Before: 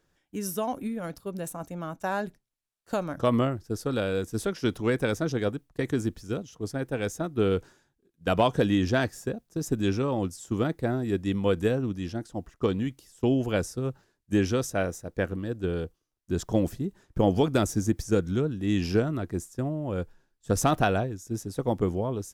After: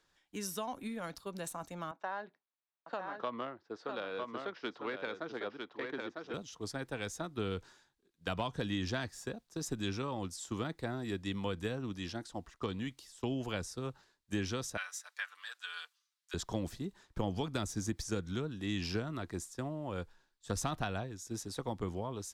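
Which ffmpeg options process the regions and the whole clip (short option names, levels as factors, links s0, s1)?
-filter_complex "[0:a]asettb=1/sr,asplit=3[s0][s1][s2];[s0]atrim=end=1.914[s3];[s1]atrim=start=1.91:end=6.34,asetpts=PTS-STARTPTS,afade=t=in:d=0.004:c=qsin,afade=t=out:st=4.426:d=0.004:c=qsin,adynamicsmooth=sensitivity=1:basefreq=2300,highpass=360,lowpass=5700,aecho=1:1:951:0.473,atrim=end_sample=195363[s4];[s2]atrim=start=6.336[s5];[s3][s4]acrossfade=d=0.004:c1=hsin:c2=qsin[s6];[s6][s5]acrossfade=d=0.004:c1=qsin:c2=hsin,asettb=1/sr,asplit=3[s7][s8][s9];[s7]atrim=end=14.774[s10];[s8]atrim=start=14.77:end=16.34,asetpts=PTS-STARTPTS,afade=t=in:d=0.004:c=qsin,afade=t=out:st=1.566:d=0.004:c=qsin,highpass=f=1200:w=0.5412,highpass=f=1200:w=1.3066,aecho=1:1:6.8:0.98,atrim=end_sample=69237[s11];[s9]atrim=start=16.336[s12];[s10][s11]acrossfade=d=0.004:c1=hsin:c2=qsin[s13];[s13][s12]acrossfade=d=0.004:c1=qsin:c2=hsin,equalizer=f=125:t=o:w=1:g=-3,equalizer=f=1000:t=o:w=1:g=8,equalizer=f=2000:t=o:w=1:g=5,equalizer=f=4000:t=o:w=1:g=11,equalizer=f=8000:t=o:w=1:g=5,acrossover=split=210[s14][s15];[s15]acompressor=threshold=0.0316:ratio=3[s16];[s14][s16]amix=inputs=2:normalize=0,volume=0.398"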